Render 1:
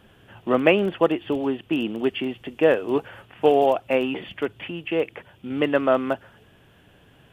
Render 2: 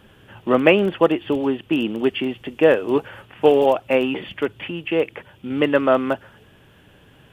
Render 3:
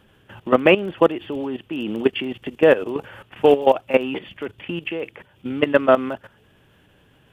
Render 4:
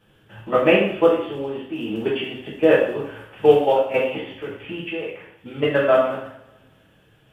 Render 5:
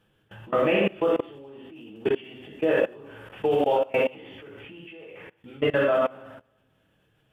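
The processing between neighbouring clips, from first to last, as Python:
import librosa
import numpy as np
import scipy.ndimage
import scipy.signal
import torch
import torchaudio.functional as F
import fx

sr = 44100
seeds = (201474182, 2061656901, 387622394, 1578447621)

y1 = fx.notch(x, sr, hz=700.0, q=12.0)
y1 = F.gain(torch.from_numpy(y1), 3.5).numpy()
y2 = fx.level_steps(y1, sr, step_db=15)
y2 = F.gain(torch.from_numpy(y2), 4.0).numpy()
y3 = fx.rev_double_slope(y2, sr, seeds[0], early_s=0.61, late_s=1.7, knee_db=-23, drr_db=-8.0)
y3 = F.gain(torch.from_numpy(y3), -9.5).numpy()
y4 = fx.level_steps(y3, sr, step_db=23)
y4 = F.gain(torch.from_numpy(y4), 2.0).numpy()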